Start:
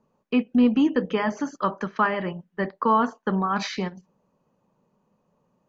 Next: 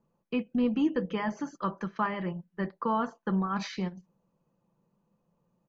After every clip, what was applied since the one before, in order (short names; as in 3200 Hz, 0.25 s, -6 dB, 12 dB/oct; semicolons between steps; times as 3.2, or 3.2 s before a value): low shelf 190 Hz +7.5 dB; comb 5.9 ms, depth 36%; gain -8.5 dB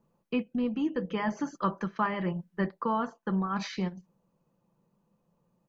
vocal rider 0.5 s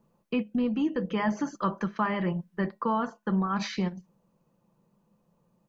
in parallel at +2.5 dB: limiter -24 dBFS, peak gain reduction 8.5 dB; on the sum: resonator 210 Hz, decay 0.25 s, harmonics odd, mix 40%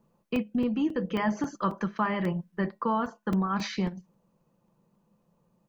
crackling interface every 0.27 s, samples 128, zero, from 0.36